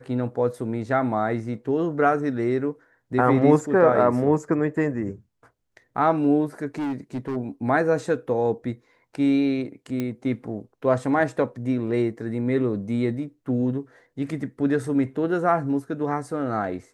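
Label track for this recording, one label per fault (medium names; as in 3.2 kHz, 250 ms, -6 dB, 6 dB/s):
6.780000	7.370000	clipped -24.5 dBFS
10.000000	10.000000	pop -15 dBFS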